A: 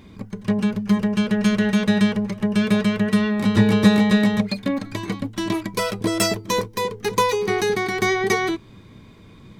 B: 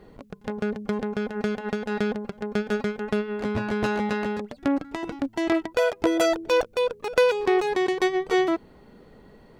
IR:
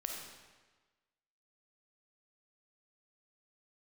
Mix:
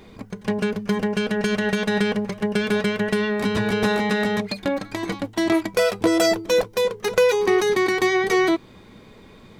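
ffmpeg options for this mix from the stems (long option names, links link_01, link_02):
-filter_complex "[0:a]lowshelf=frequency=290:gain=-9.5,alimiter=limit=-17dB:level=0:latency=1:release=65,volume=1.5dB[link_01];[1:a]volume=1dB[link_02];[link_01][link_02]amix=inputs=2:normalize=0"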